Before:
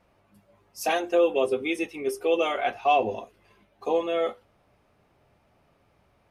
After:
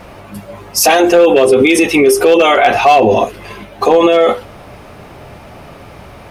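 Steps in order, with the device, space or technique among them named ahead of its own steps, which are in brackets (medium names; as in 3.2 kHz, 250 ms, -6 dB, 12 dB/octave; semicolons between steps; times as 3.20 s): loud club master (compression 2:1, threshold -25 dBFS, peak gain reduction 5 dB; hard clipper -20 dBFS, distortion -21 dB; loudness maximiser +31 dB); trim -1 dB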